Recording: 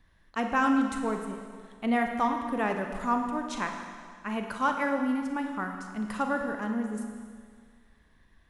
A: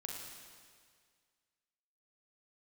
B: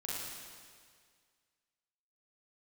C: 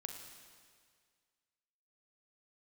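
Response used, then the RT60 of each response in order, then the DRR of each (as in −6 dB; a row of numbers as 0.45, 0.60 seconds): C; 1.9, 1.9, 1.9 seconds; −1.0, −7.0, 3.5 decibels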